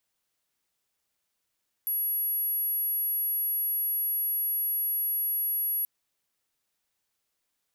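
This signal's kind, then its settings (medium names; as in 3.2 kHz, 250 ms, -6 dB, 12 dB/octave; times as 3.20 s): tone sine 11.4 kHz -25.5 dBFS 3.98 s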